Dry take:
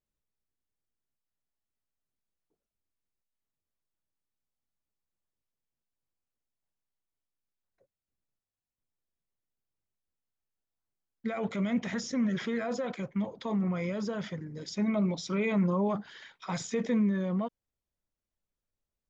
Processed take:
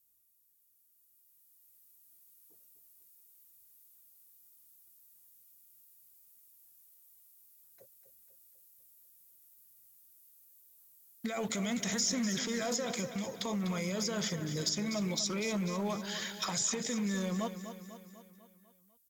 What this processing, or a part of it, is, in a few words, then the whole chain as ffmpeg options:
FM broadcast chain: -filter_complex "[0:a]highpass=45,dynaudnorm=f=170:g=17:m=2.99,acrossover=split=1300|4400[s0][s1][s2];[s0]acompressor=threshold=0.0355:ratio=4[s3];[s1]acompressor=threshold=0.00708:ratio=4[s4];[s2]acompressor=threshold=0.00891:ratio=4[s5];[s3][s4][s5]amix=inputs=3:normalize=0,aemphasis=mode=production:type=50fm,alimiter=level_in=1.26:limit=0.0631:level=0:latency=1:release=435,volume=0.794,asoftclip=type=hard:threshold=0.0376,lowpass=f=15000:w=0.5412,lowpass=f=15000:w=1.3066,aemphasis=mode=production:type=50fm,aecho=1:1:248|496|744|992|1240|1488:0.299|0.164|0.0903|0.0497|0.0273|0.015"

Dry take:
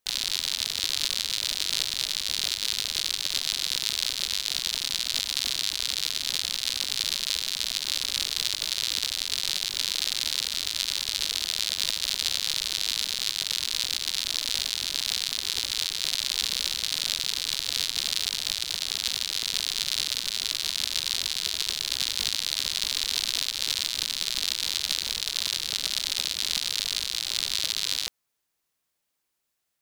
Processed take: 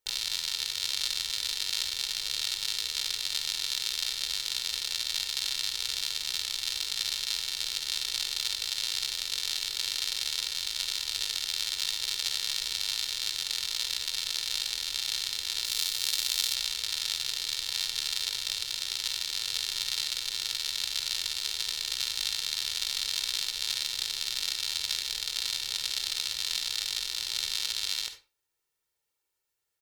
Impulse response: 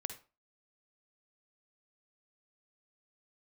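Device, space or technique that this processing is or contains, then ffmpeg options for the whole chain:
microphone above a desk: -filter_complex "[0:a]aecho=1:1:2.2:0.58[s0];[1:a]atrim=start_sample=2205[s1];[s0][s1]afir=irnorm=-1:irlink=0,asettb=1/sr,asplit=3[s2][s3][s4];[s2]atrim=end=15.654[s5];[s3]atrim=start=15.65:end=16.55,asetpts=PTS-STARTPTS,afade=t=in:d=0.004:c=qsin,afade=t=out:st=0.896:d=0.004:c=qsin,highshelf=f=8600:g=10[s6];[s4]atrim=start=16.546[s7];[s5][s6]acrossfade=d=0.004:c1=hsin:c2=qsin[s8];[s8][s7]acrossfade=d=0.004:c1=qsin:c2=hsin,volume=0.668"

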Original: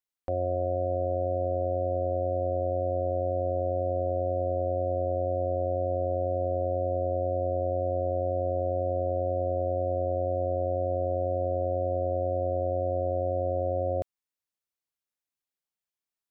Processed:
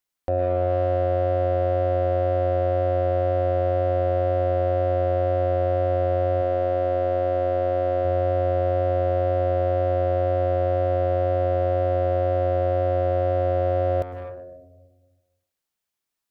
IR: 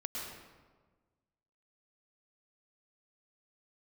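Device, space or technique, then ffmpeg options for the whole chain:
saturated reverb return: -filter_complex "[0:a]asplit=2[s0][s1];[1:a]atrim=start_sample=2205[s2];[s1][s2]afir=irnorm=-1:irlink=0,asoftclip=type=tanh:threshold=0.0266,volume=0.668[s3];[s0][s3]amix=inputs=2:normalize=0,asettb=1/sr,asplit=3[s4][s5][s6];[s4]atrim=end=6.414[s7];[s5]atrim=start=6.41:end=8.05,asetpts=PTS-STARTPTS,afade=t=in:d=0.004:c=qsin,afade=t=out:st=1.636:d=0.004:c=qsin,equalizer=f=79:t=o:w=1.3:g=-6[s8];[s6]atrim=start=8.046[s9];[s7][s8]acrossfade=d=0.004:c1=hsin:c2=qsin[s10];[s10][s9]acrossfade=d=0.004:c1=qsin:c2=hsin,volume=1.58"

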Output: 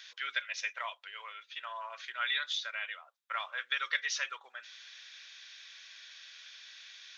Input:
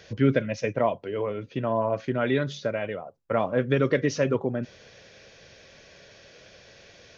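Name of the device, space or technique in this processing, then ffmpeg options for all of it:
headphones lying on a table: -af "highpass=f=1300:w=0.5412,highpass=f=1300:w=1.3066,equalizer=f=3600:t=o:w=0.3:g=9"

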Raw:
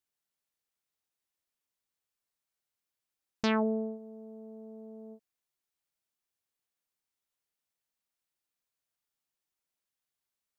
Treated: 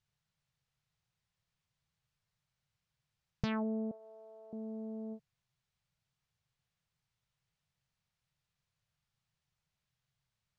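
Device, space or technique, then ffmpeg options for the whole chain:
jukebox: -filter_complex "[0:a]lowpass=5400,lowshelf=f=200:t=q:w=3:g=12,acompressor=threshold=0.0112:ratio=4,asettb=1/sr,asplit=3[s0][s1][s2];[s0]atrim=end=3.914[s3];[s1]atrim=start=3.91:end=4.53,asetpts=PTS-STARTPTS,afade=t=in:d=0.004:c=qsin,afade=t=out:st=0.616:d=0.004:c=qsin,highpass=f=560:w=0.5412,highpass=f=560:w=1.3066[s4];[s2]atrim=start=4.526[s5];[s3][s4]acrossfade=d=0.004:c1=hsin:c2=qsin[s6];[s6][s5]acrossfade=d=0.004:c1=qsin:c2=hsin,volume=1.68"

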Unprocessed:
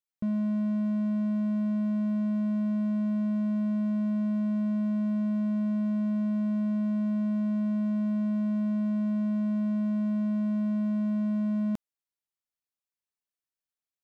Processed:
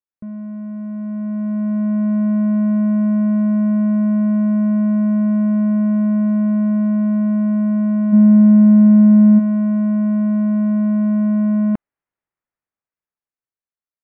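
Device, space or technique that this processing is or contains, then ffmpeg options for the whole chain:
action camera in a waterproof case: -filter_complex "[0:a]asplit=3[s0][s1][s2];[s0]afade=t=out:st=8.12:d=0.02[s3];[s1]lowshelf=f=330:g=11.5,afade=t=in:st=8.12:d=0.02,afade=t=out:st=9.38:d=0.02[s4];[s2]afade=t=in:st=9.38:d=0.02[s5];[s3][s4][s5]amix=inputs=3:normalize=0,lowpass=f=2100:w=0.5412,lowpass=f=2100:w=1.3066,dynaudnorm=f=150:g=21:m=4.73,volume=0.841" -ar 44100 -c:a aac -b:a 64k

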